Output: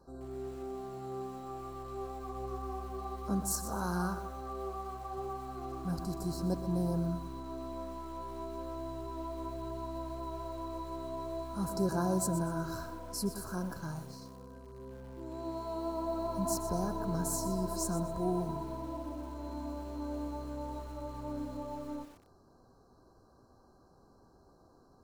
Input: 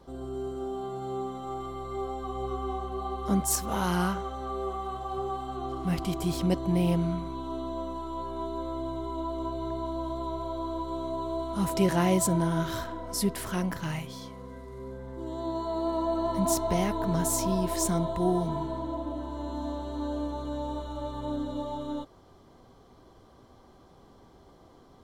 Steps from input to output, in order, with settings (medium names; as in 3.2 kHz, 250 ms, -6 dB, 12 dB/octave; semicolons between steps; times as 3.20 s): FFT band-reject 1.7–3.9 kHz; bit-crushed delay 123 ms, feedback 35%, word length 7-bit, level -11 dB; trim -7 dB